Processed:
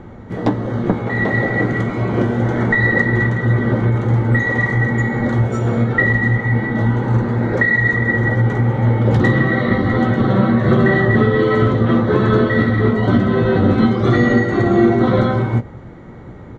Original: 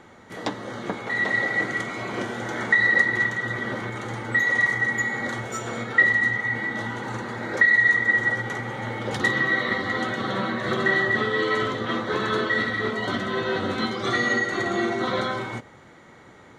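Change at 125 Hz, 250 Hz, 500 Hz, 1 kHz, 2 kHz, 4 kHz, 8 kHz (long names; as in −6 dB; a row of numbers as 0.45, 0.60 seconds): +20.5 dB, +15.0 dB, +10.5 dB, +6.0 dB, +1.5 dB, −2.5 dB, can't be measured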